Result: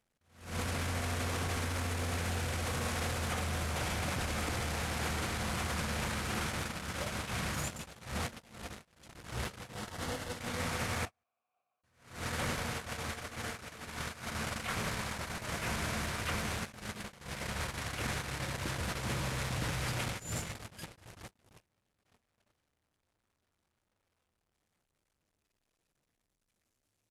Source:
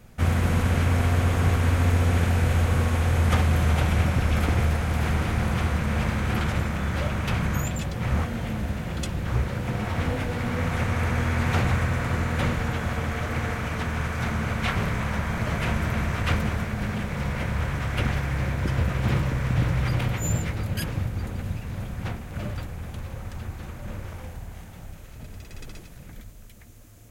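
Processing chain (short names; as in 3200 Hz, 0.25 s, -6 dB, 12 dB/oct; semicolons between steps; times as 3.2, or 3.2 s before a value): delta modulation 64 kbps, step -24.5 dBFS; 9.74–10.37 notch 2400 Hz, Q 6.4; 11.05–11.83 vowel filter a; echo 0.184 s -13.5 dB; gate -24 dBFS, range -45 dB; limiter -20.5 dBFS, peak gain reduction 12 dB; low shelf 210 Hz -9 dB; attack slew limiter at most 120 dB/s; gain -2 dB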